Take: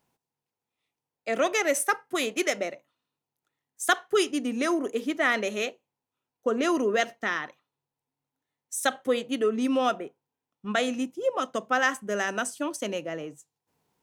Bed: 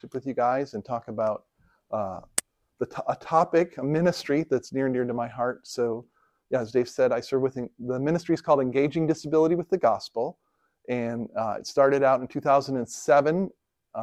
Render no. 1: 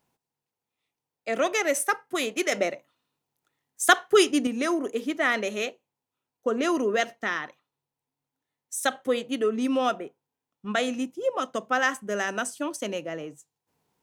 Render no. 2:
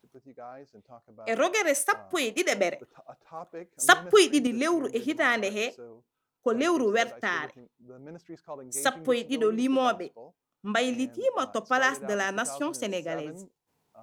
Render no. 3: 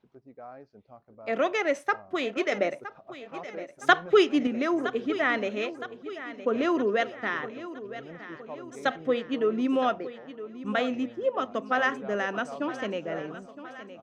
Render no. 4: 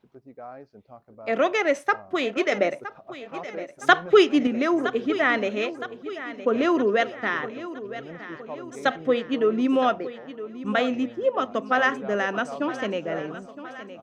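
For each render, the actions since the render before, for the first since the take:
2.52–4.47 s: gain +5 dB
add bed -20 dB
distance through air 210 m; feedback delay 965 ms, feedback 51%, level -14 dB
trim +4 dB; peak limiter -2 dBFS, peak gain reduction 1.5 dB

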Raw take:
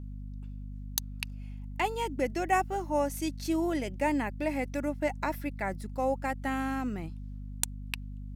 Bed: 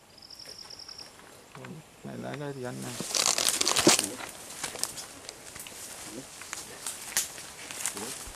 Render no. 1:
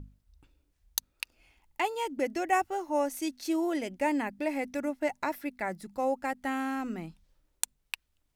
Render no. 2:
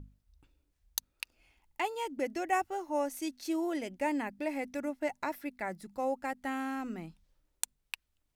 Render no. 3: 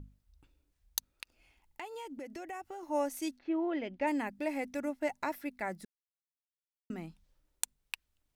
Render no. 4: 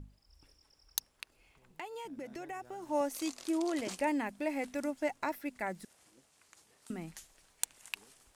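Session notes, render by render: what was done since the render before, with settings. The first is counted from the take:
hum notches 50/100/150/200/250 Hz
trim -3.5 dB
1.12–2.83 s: compression, threshold -40 dBFS; 3.37–4.06 s: low-pass 2 kHz -> 4.9 kHz 24 dB/octave; 5.85–6.90 s: mute
add bed -23 dB

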